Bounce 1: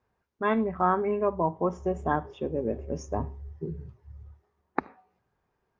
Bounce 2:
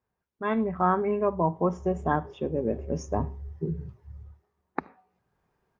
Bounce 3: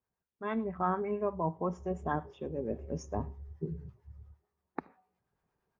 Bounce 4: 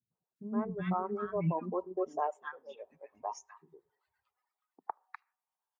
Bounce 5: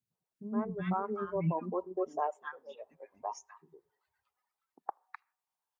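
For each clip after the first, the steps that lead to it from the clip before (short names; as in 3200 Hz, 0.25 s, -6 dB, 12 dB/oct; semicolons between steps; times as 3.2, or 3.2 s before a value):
bell 170 Hz +4 dB 0.5 oct; AGC gain up to 10.5 dB; gain -8 dB
harmonic tremolo 8.8 Hz, depth 50%, crossover 730 Hz; gain -5 dB
three bands offset in time lows, mids, highs 0.11/0.36 s, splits 310/1300 Hz; high-pass sweep 140 Hz -> 900 Hz, 1.37–2.59; reverb removal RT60 1.7 s
record warp 33 1/3 rpm, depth 100 cents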